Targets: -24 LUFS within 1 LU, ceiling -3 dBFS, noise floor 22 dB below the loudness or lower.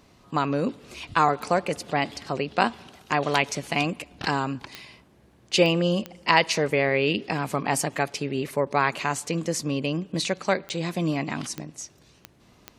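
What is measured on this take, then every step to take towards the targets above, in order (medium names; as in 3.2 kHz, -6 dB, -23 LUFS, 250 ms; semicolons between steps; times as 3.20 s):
clicks found 7; loudness -25.5 LUFS; peak level -1.5 dBFS; loudness target -24.0 LUFS
-> de-click; trim +1.5 dB; peak limiter -3 dBFS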